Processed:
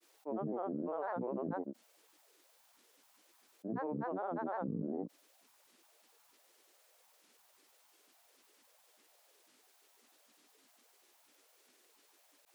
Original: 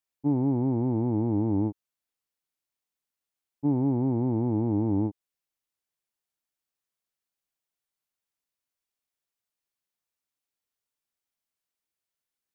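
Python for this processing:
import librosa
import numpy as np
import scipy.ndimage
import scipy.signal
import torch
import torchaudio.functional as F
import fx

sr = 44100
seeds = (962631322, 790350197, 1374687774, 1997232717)

y = fx.ladder_highpass(x, sr, hz=440.0, resonance_pct=65)
y = fx.granulator(y, sr, seeds[0], grain_ms=100.0, per_s=20.0, spray_ms=100.0, spread_st=12)
y = fx.env_flatten(y, sr, amount_pct=50)
y = F.gain(torch.from_numpy(y), 2.5).numpy()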